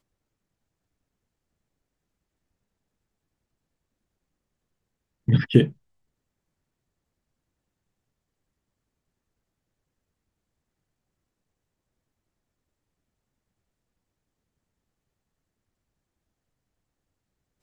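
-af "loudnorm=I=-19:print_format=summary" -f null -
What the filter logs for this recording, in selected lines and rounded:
Input Integrated:    -21.4 LUFS
Input True Peak:      -1.4 dBTP
Input LRA:             0.0 LU
Input Threshold:     -32.5 LUFS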